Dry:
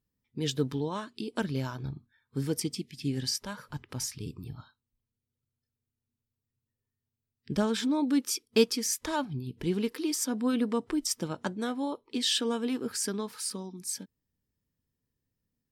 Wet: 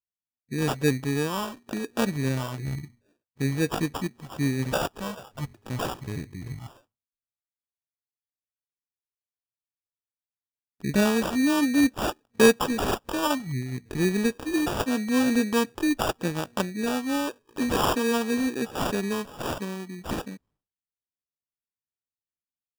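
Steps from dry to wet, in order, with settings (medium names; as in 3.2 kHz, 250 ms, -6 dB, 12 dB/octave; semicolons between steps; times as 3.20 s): expander -56 dBFS; tempo 0.69×; sample-and-hold 21×; trim +5 dB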